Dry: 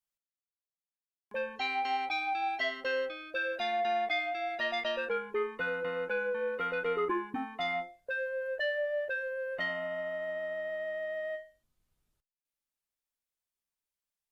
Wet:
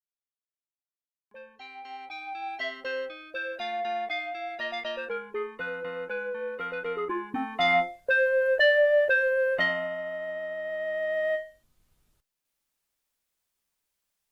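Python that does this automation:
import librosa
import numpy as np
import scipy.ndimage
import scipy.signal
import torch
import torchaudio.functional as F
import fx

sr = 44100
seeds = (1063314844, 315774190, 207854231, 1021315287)

y = fx.gain(x, sr, db=fx.line((1.73, -12.0), (2.64, -0.5), (7.08, -0.5), (7.75, 11.5), (9.47, 11.5), (9.98, 2.0), (10.57, 2.0), (11.32, 10.0)))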